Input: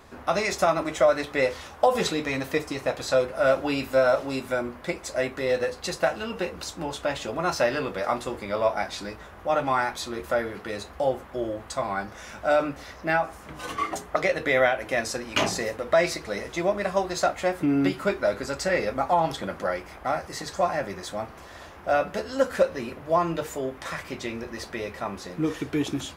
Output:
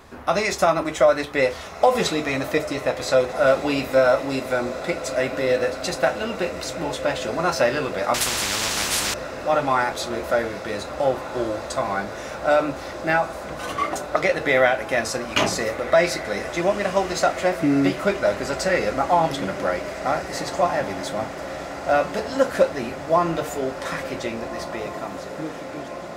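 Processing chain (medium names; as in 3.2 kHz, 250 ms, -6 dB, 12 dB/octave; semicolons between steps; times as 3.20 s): fade out at the end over 2.22 s; echo that smears into a reverb 1601 ms, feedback 76%, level -13 dB; 8.14–9.14 s: spectrum-flattening compressor 10:1; trim +3.5 dB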